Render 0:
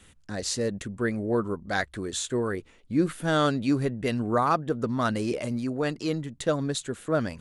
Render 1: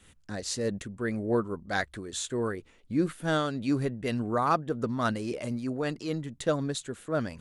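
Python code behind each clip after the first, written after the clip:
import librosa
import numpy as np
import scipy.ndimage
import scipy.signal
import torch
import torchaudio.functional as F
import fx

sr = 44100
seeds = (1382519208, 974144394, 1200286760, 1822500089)

y = fx.am_noise(x, sr, seeds[0], hz=5.7, depth_pct=60)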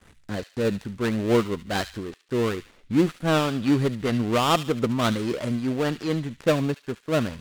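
y = fx.dead_time(x, sr, dead_ms=0.23)
y = fx.high_shelf(y, sr, hz=9400.0, db=-10.5)
y = fx.echo_wet_highpass(y, sr, ms=72, feedback_pct=38, hz=2200.0, wet_db=-9.0)
y = y * librosa.db_to_amplitude(6.5)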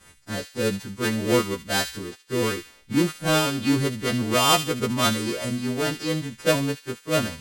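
y = fx.freq_snap(x, sr, grid_st=2)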